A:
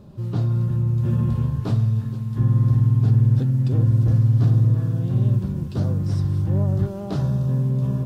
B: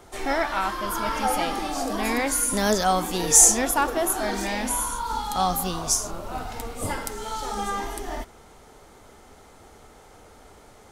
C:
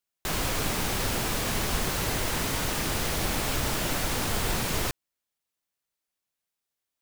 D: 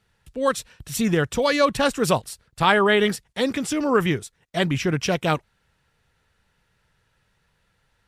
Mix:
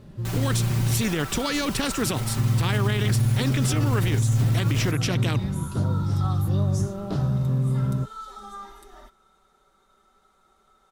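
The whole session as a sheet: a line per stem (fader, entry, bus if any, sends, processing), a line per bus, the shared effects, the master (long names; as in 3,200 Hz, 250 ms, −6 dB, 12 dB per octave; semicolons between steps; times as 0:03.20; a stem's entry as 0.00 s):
−2.0 dB, 0.00 s, muted 0:01.02–0:02.01, no bus, no send, no processing
−19.0 dB, 0.85 s, bus A, no send, hollow resonant body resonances 1,300/3,700 Hz, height 16 dB, ringing for 25 ms
−7.0 dB, 0.00 s, bus A, no send, hard clipping −23 dBFS, distortion −17 dB
−9.0 dB, 0.00 s, no bus, no send, low shelf with overshoot 440 Hz +12.5 dB, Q 1.5; every bin compressed towards the loudest bin 2 to 1
bus A: 0.0 dB, comb filter 5.2 ms, depth 78%; brickwall limiter −26 dBFS, peak gain reduction 9.5 dB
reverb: not used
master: brickwall limiter −14 dBFS, peak gain reduction 9 dB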